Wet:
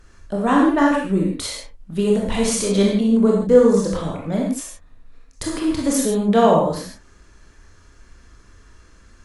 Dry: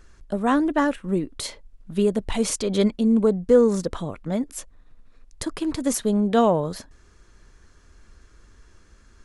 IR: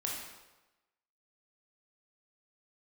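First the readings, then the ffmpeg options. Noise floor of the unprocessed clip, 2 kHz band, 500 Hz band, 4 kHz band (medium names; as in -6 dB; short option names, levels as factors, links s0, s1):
-54 dBFS, +5.5 dB, +4.0 dB, +4.5 dB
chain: -filter_complex "[1:a]atrim=start_sample=2205,atrim=end_sample=6615,asetrate=38808,aresample=44100[s0];[0:a][s0]afir=irnorm=-1:irlink=0,volume=1.26"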